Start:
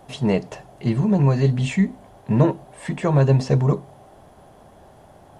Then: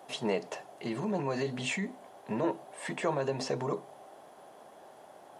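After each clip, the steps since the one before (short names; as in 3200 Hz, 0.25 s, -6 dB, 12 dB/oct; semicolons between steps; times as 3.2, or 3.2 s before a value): limiter -14.5 dBFS, peak gain reduction 10 dB; HPF 360 Hz 12 dB/oct; gain -2.5 dB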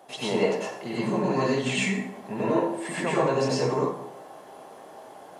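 plate-style reverb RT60 0.74 s, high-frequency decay 0.7×, pre-delay 80 ms, DRR -7 dB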